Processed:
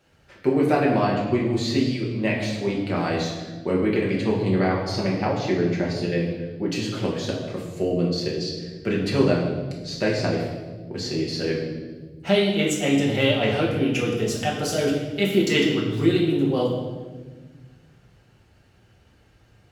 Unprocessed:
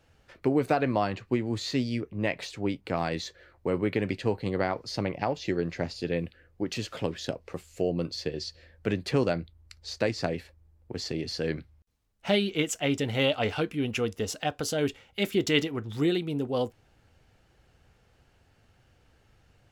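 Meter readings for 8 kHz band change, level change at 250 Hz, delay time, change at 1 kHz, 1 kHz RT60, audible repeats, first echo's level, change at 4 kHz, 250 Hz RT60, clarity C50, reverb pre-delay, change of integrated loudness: +4.5 dB, +7.5 dB, no echo, +5.0 dB, 1.1 s, no echo, no echo, +5.0 dB, 2.1 s, 3.5 dB, 5 ms, +6.5 dB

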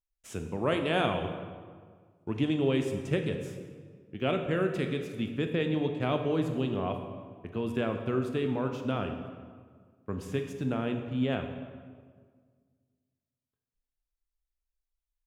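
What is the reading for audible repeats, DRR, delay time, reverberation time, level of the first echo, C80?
no echo, 5.0 dB, no echo, 1.7 s, no echo, 8.0 dB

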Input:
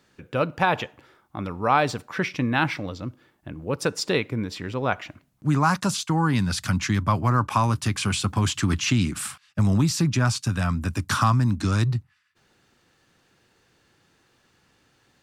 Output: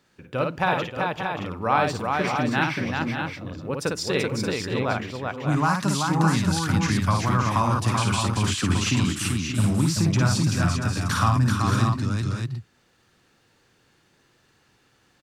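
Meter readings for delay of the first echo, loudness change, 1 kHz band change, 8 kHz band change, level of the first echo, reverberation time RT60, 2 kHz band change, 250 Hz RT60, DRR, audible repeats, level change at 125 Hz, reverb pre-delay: 55 ms, +0.5 dB, +1.0 dB, +1.0 dB, -4.0 dB, no reverb, +1.0 dB, no reverb, no reverb, 4, +1.0 dB, no reverb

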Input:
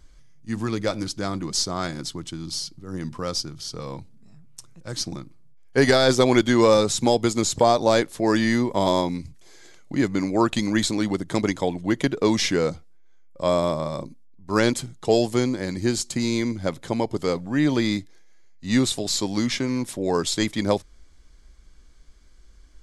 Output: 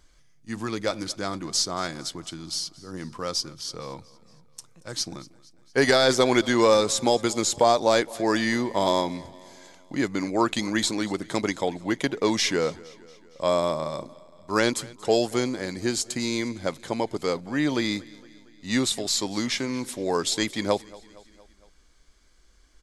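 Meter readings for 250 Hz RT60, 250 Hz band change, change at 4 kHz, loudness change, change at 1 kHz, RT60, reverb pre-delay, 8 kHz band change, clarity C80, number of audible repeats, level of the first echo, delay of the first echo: no reverb, -4.5 dB, 0.0 dB, -2.0 dB, -0.5 dB, no reverb, no reverb, 0.0 dB, no reverb, 3, -22.0 dB, 231 ms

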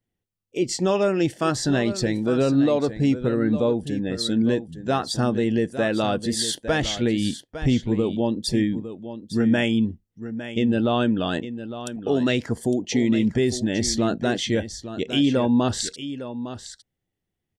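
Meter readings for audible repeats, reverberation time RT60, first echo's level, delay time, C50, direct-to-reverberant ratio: 1, no reverb, -12.0 dB, 857 ms, no reverb, no reverb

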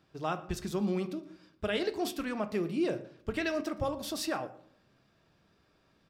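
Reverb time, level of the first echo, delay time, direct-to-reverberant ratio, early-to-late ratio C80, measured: 0.60 s, -22.5 dB, 117 ms, 9.0 dB, 17.5 dB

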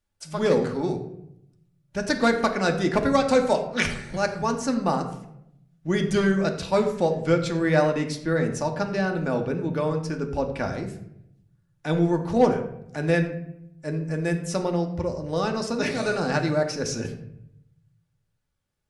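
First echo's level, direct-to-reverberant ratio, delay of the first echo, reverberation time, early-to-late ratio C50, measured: no echo, 3.5 dB, no echo, 0.75 s, 9.0 dB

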